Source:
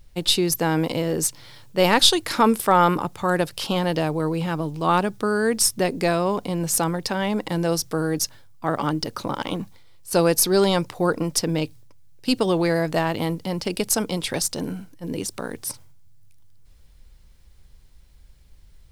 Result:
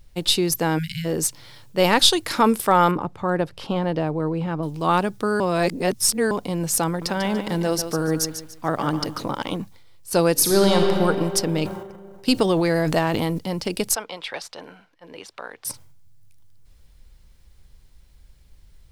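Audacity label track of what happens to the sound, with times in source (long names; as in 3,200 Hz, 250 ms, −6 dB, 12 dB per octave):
0.780000	1.050000	time-frequency box erased 210–1,400 Hz
2.910000	4.630000	low-pass filter 1,300 Hz 6 dB per octave
5.400000	6.310000	reverse
6.870000	9.310000	feedback echo at a low word length 145 ms, feedback 35%, word length 8 bits, level −9 dB
10.320000	10.930000	thrown reverb, RT60 2.6 s, DRR 0.5 dB
11.620000	13.390000	transient designer attack +3 dB, sustain +9 dB
13.950000	15.650000	three-way crossover with the lows and the highs turned down lows −21 dB, under 550 Hz, highs −22 dB, over 4,000 Hz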